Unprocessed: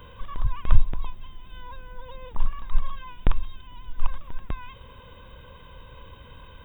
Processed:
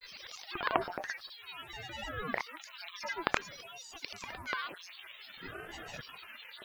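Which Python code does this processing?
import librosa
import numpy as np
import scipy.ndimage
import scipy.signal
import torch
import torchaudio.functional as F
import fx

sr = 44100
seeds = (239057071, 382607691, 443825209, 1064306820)

y = fx.filter_lfo_highpass(x, sr, shape='square', hz=0.83, low_hz=630.0, high_hz=2900.0, q=1.7)
y = fx.granulator(y, sr, seeds[0], grain_ms=100.0, per_s=20.0, spray_ms=100.0, spread_st=12)
y = fx.ring_lfo(y, sr, carrier_hz=560.0, swing_pct=85, hz=0.52)
y = y * librosa.db_to_amplitude(8.0)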